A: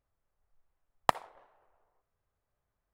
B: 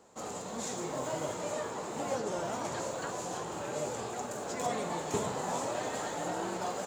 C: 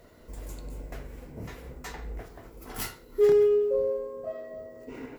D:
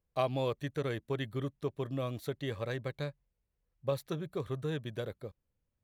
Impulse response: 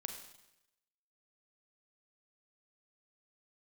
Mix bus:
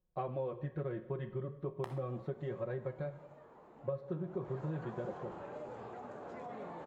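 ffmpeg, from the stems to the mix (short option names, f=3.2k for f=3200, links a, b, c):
-filter_complex "[0:a]alimiter=limit=-12.5dB:level=0:latency=1,adelay=750,volume=-4.5dB,asplit=2[a][b];[b]volume=-8.5dB[c];[1:a]alimiter=level_in=4.5dB:limit=-24dB:level=0:latency=1:release=52,volume=-4.5dB,lowpass=1.8k,adelay=1800,volume=-3.5dB,afade=t=in:st=4.3:d=0.34:silence=0.266073[d];[3:a]lowpass=1.1k,aecho=1:1:5.5:1,volume=-1dB,asplit=2[e][f];[f]volume=-3.5dB[g];[4:a]atrim=start_sample=2205[h];[c][g]amix=inputs=2:normalize=0[i];[i][h]afir=irnorm=-1:irlink=0[j];[a][d][e][j]amix=inputs=4:normalize=0,flanger=delay=9.4:depth=8.3:regen=-64:speed=0.35:shape=triangular,acompressor=threshold=-35dB:ratio=4"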